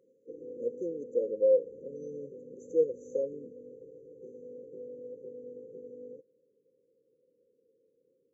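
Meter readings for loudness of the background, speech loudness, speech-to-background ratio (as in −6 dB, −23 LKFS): −47.5 LKFS, −30.5 LKFS, 17.0 dB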